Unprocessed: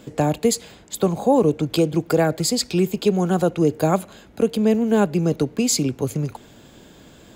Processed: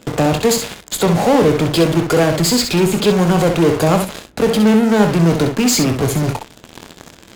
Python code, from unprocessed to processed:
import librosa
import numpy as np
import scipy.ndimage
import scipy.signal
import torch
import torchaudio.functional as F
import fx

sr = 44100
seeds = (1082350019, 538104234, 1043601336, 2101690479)

p1 = fx.fuzz(x, sr, gain_db=48.0, gate_db=-39.0)
p2 = x + (p1 * 10.0 ** (-4.0 / 20.0))
p3 = fx.room_early_taps(p2, sr, ms=(24, 65), db=(-10.5, -7.0))
p4 = np.interp(np.arange(len(p3)), np.arange(len(p3))[::2], p3[::2])
y = p4 * 10.0 ** (-1.0 / 20.0)